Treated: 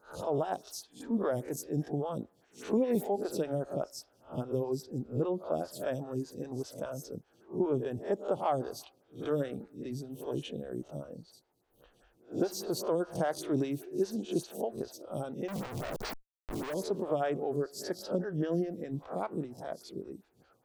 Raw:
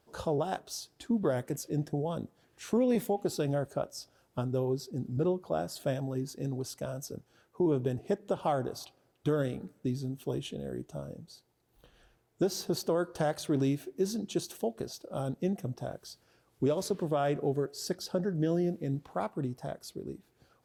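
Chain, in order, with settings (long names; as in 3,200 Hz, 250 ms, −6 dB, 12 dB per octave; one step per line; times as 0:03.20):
peak hold with a rise ahead of every peak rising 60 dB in 0.32 s
0:15.48–0:16.74: comparator with hysteresis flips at −46.5 dBFS
phaser with staggered stages 5 Hz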